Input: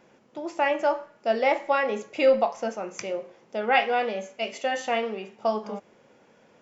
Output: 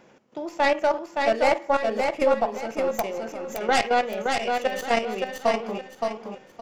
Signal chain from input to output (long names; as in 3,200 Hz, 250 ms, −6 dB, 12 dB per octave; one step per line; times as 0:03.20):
stylus tracing distortion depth 0.18 ms
0:01.65–0:02.54: parametric band 4,400 Hz −8.5 dB 2.7 octaves
output level in coarse steps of 12 dB
repeating echo 569 ms, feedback 31%, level −4 dB
0:03.17–0:03.58: transient designer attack −2 dB, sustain +6 dB
level +5 dB